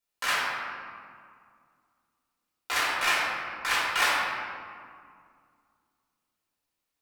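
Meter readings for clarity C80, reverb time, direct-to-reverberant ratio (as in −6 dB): 0.5 dB, 2.2 s, −7.5 dB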